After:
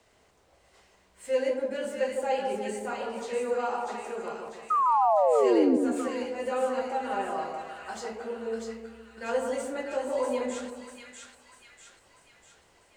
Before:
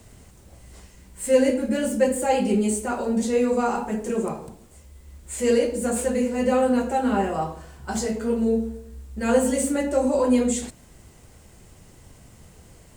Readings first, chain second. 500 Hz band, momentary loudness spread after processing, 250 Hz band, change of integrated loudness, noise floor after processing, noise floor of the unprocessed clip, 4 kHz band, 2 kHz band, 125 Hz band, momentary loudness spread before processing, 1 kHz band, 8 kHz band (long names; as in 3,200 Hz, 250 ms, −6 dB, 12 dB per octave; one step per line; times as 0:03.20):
−5.0 dB, 18 LU, −9.5 dB, −5.5 dB, −64 dBFS, −51 dBFS, −5.5 dB, −4.5 dB, below −15 dB, 11 LU, +0.5 dB, −14.0 dB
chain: three-way crossover with the lows and the highs turned down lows −18 dB, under 390 Hz, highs −14 dB, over 5,500 Hz
sound drawn into the spectrogram fall, 0:04.70–0:05.77, 240–1,300 Hz −17 dBFS
echo with a time of its own for lows and highs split 1,400 Hz, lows 155 ms, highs 645 ms, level −4 dB
level −6.5 dB